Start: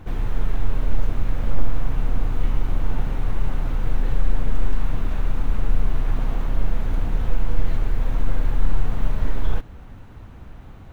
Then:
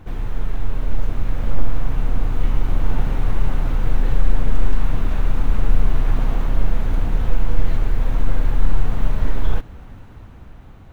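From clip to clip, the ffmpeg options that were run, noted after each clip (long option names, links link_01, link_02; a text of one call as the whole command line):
ffmpeg -i in.wav -af "dynaudnorm=framelen=130:gausssize=17:maxgain=11.5dB,volume=-1dB" out.wav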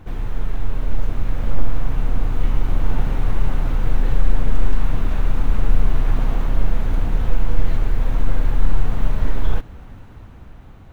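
ffmpeg -i in.wav -af anull out.wav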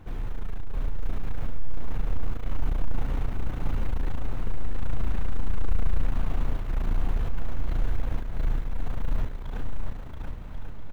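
ffmpeg -i in.wav -filter_complex "[0:a]asoftclip=type=tanh:threshold=-15dB,asplit=2[link_01][link_02];[link_02]aecho=0:1:680|1088|1333|1480|1568:0.631|0.398|0.251|0.158|0.1[link_03];[link_01][link_03]amix=inputs=2:normalize=0,volume=-5.5dB" out.wav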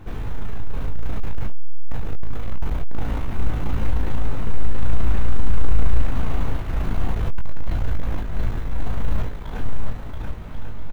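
ffmpeg -i in.wav -filter_complex "[0:a]aeval=exprs='clip(val(0),-1,0.0891)':channel_layout=same,asplit=2[link_01][link_02];[link_02]adelay=19,volume=-4.5dB[link_03];[link_01][link_03]amix=inputs=2:normalize=0,volume=5.5dB" out.wav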